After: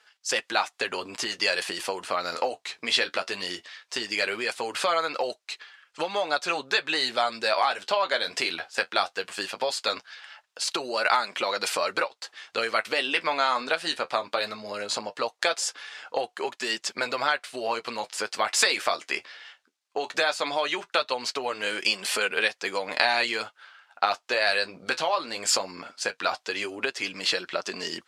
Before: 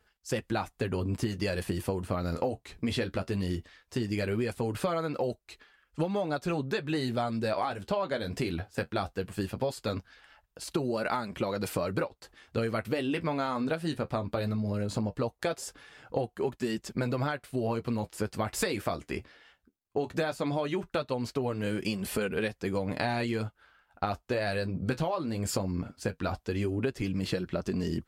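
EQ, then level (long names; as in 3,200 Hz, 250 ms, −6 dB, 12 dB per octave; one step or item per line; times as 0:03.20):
high-pass filter 730 Hz 12 dB per octave
low-pass filter 5,900 Hz 12 dB per octave
high-shelf EQ 2,600 Hz +9.5 dB
+8.5 dB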